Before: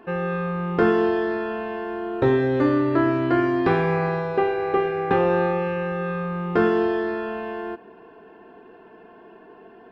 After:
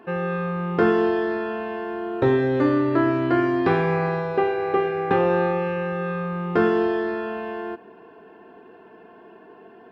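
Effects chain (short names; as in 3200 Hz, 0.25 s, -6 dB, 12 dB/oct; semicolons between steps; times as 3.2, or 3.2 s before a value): HPF 67 Hz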